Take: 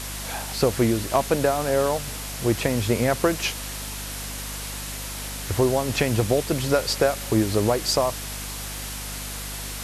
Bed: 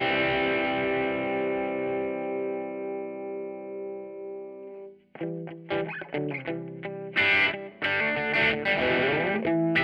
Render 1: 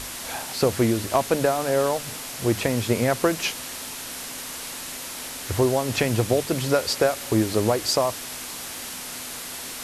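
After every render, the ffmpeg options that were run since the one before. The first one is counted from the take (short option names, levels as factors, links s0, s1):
-af "bandreject=f=50:t=h:w=6,bandreject=f=100:t=h:w=6,bandreject=f=150:t=h:w=6,bandreject=f=200:t=h:w=6"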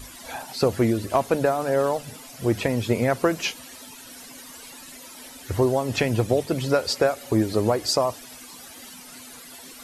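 -af "afftdn=nr=14:nf=-35"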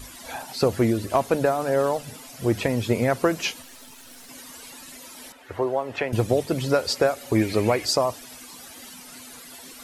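-filter_complex "[0:a]asettb=1/sr,asplit=3[s0][s1][s2];[s0]atrim=end=3.624[s3];[s1]atrim=start=3.62:end=4.29,asetpts=PTS-STARTPTS,afade=t=in:d=0.004:c=qsin,afade=t=out:st=0.666:d=0.004:c=qsin,aeval=exprs='if(lt(val(0),0),0.251*val(0),val(0))':c=same[s4];[s2]atrim=start=4.286[s5];[s3][s4]acrossfade=d=0.004:c1=hsin:c2=qsin[s6];[s6][s5]acrossfade=d=0.004:c1=qsin:c2=hsin,asettb=1/sr,asplit=3[s7][s8][s9];[s7]atrim=end=5.324[s10];[s8]atrim=start=5.32:end=6.13,asetpts=PTS-STARTPTS,afade=t=in:d=0.004:c=qsin,afade=t=out:st=0.806:d=0.004:c=qsin,acrossover=split=380 2800:gain=0.2 1 0.141[s11][s12][s13];[s11][s12][s13]amix=inputs=3:normalize=0[s14];[s9]atrim=start=6.126[s15];[s10][s14]acrossfade=d=0.004:c1=hsin:c2=qsin[s16];[s16][s15]acrossfade=d=0.004:c1=qsin:c2=hsin,asettb=1/sr,asplit=3[s17][s18][s19];[s17]atrim=end=7.354[s20];[s18]atrim=start=7.35:end=7.85,asetpts=PTS-STARTPTS,afade=t=in:d=0.004:c=qsin,afade=t=out:st=0.496:d=0.004:c=qsin,equalizer=f=2300:t=o:w=0.56:g=14.5[s21];[s19]atrim=start=7.846[s22];[s20][s21]acrossfade=d=0.004:c1=hsin:c2=qsin[s23];[s23][s22]acrossfade=d=0.004:c1=qsin:c2=hsin"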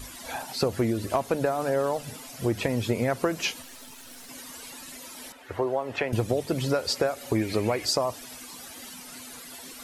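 -af "acompressor=threshold=0.0708:ratio=2.5"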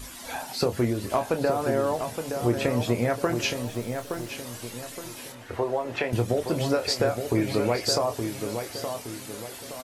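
-filter_complex "[0:a]asplit=2[s0][s1];[s1]adelay=25,volume=0.398[s2];[s0][s2]amix=inputs=2:normalize=0,asplit=2[s3][s4];[s4]adelay=869,lowpass=f=2300:p=1,volume=0.473,asplit=2[s5][s6];[s6]adelay=869,lowpass=f=2300:p=1,volume=0.42,asplit=2[s7][s8];[s8]adelay=869,lowpass=f=2300:p=1,volume=0.42,asplit=2[s9][s10];[s10]adelay=869,lowpass=f=2300:p=1,volume=0.42,asplit=2[s11][s12];[s12]adelay=869,lowpass=f=2300:p=1,volume=0.42[s13];[s3][s5][s7][s9][s11][s13]amix=inputs=6:normalize=0"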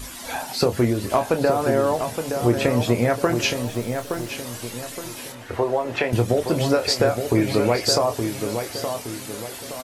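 -af "volume=1.78"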